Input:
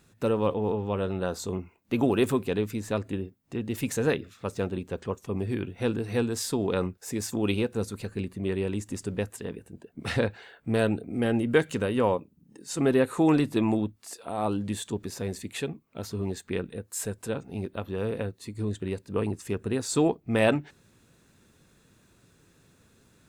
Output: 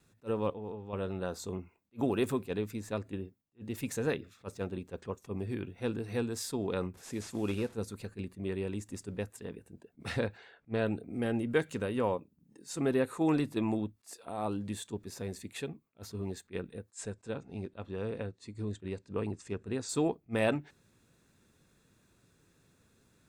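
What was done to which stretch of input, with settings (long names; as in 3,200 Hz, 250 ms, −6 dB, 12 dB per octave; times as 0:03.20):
0:00.50–0:00.93: clip gain −7 dB
0:06.94–0:07.76: linear delta modulator 64 kbit/s, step −42.5 dBFS
0:10.37–0:10.85: low-pass filter 7,600 Hz → 3,800 Hz
0:16.90–0:19.89: Butterworth low-pass 8,500 Hz
whole clip: notch filter 3,000 Hz, Q 21; noise gate with hold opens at −53 dBFS; level that may rise only so fast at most 440 dB per second; level −6.5 dB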